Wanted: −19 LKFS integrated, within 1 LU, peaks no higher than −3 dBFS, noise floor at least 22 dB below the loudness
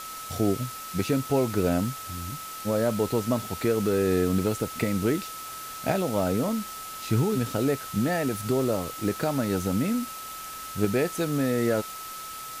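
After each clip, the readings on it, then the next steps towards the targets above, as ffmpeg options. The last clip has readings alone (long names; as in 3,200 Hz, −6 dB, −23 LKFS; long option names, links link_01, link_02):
interfering tone 1,300 Hz; level of the tone −38 dBFS; background noise floor −38 dBFS; target noise floor −50 dBFS; integrated loudness −27.5 LKFS; sample peak −10.0 dBFS; target loudness −19.0 LKFS
→ -af "bandreject=frequency=1300:width=30"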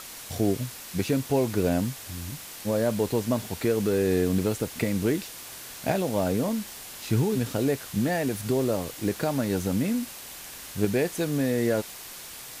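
interfering tone none found; background noise floor −42 dBFS; target noise floor −49 dBFS
→ -af "afftdn=noise_reduction=7:noise_floor=-42"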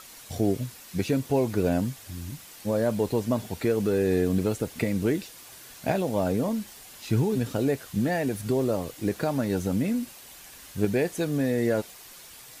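background noise floor −47 dBFS; target noise floor −49 dBFS
→ -af "afftdn=noise_reduction=6:noise_floor=-47"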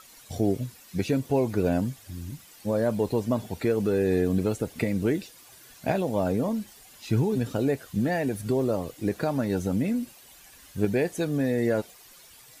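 background noise floor −52 dBFS; integrated loudness −27.0 LKFS; sample peak −10.0 dBFS; target loudness −19.0 LKFS
→ -af "volume=8dB,alimiter=limit=-3dB:level=0:latency=1"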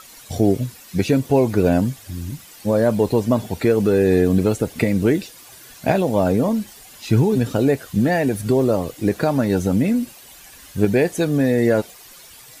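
integrated loudness −19.0 LKFS; sample peak −3.0 dBFS; background noise floor −44 dBFS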